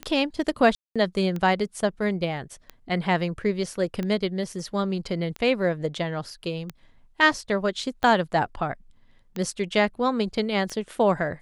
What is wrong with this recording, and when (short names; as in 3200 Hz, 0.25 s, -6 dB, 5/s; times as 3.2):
tick 45 rpm -18 dBFS
0.75–0.96 gap 0.206 s